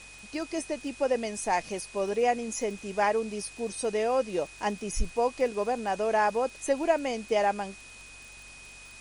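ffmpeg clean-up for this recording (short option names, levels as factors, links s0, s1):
-af "adeclick=t=4,bandreject=f=47.3:t=h:w=4,bandreject=f=94.6:t=h:w=4,bandreject=f=141.9:t=h:w=4,bandreject=f=2500:w=30,afftdn=nr=25:nf=-48"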